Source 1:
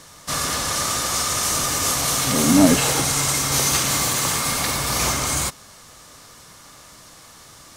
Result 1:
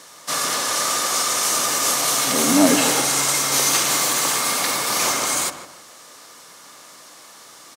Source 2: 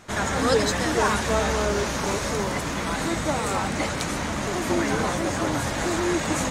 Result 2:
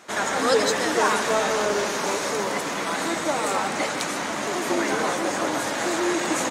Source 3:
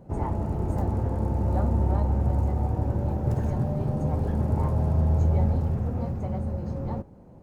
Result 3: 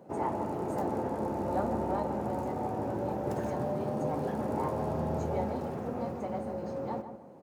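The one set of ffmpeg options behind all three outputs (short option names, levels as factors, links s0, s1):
-filter_complex "[0:a]highpass=300,asplit=2[s0][s1];[s1]adelay=152,lowpass=f=1700:p=1,volume=0.376,asplit=2[s2][s3];[s3]adelay=152,lowpass=f=1700:p=1,volume=0.35,asplit=2[s4][s5];[s5]adelay=152,lowpass=f=1700:p=1,volume=0.35,asplit=2[s6][s7];[s7]adelay=152,lowpass=f=1700:p=1,volume=0.35[s8];[s2][s4][s6][s8]amix=inputs=4:normalize=0[s9];[s0][s9]amix=inputs=2:normalize=0,volume=1.19"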